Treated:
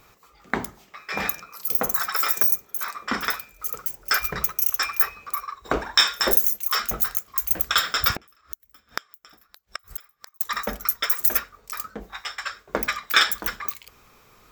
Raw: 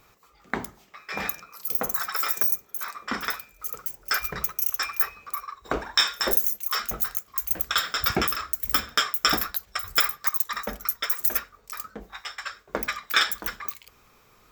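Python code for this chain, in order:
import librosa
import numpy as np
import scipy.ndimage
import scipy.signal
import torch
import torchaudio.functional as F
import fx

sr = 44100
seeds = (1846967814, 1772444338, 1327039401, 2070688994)

y = fx.gate_flip(x, sr, shuts_db=-19.0, range_db=-34, at=(8.11, 10.41))
y = F.gain(torch.from_numpy(y), 3.5).numpy()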